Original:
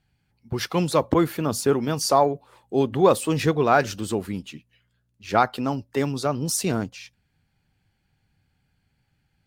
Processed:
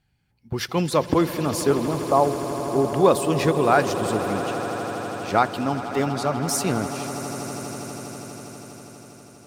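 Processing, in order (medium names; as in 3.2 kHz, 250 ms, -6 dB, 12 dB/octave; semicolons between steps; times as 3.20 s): 1.74–2.85 s: elliptic low-pass 1.2 kHz; echo with a slow build-up 81 ms, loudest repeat 8, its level -16 dB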